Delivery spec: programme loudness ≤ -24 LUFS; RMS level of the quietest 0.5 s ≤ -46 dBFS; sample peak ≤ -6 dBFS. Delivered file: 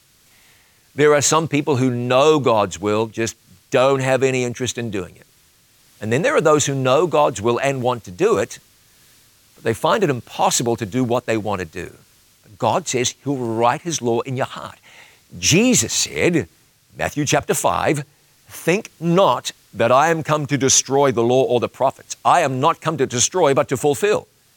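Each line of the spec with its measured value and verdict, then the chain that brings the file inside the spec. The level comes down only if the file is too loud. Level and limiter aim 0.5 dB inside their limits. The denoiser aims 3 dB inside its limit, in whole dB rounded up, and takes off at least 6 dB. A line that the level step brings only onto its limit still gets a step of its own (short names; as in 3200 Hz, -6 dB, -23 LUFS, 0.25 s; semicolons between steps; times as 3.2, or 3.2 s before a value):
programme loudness -18.5 LUFS: fail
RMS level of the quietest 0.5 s -55 dBFS: OK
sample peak -3.0 dBFS: fail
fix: gain -6 dB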